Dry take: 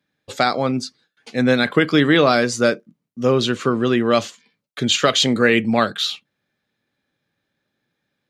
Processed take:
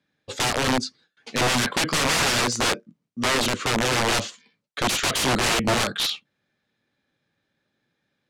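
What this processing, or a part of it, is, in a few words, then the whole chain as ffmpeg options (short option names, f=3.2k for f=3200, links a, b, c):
overflowing digital effects unit: -af "aeval=exprs='(mod(5.96*val(0)+1,2)-1)/5.96':c=same,lowpass=8.5k"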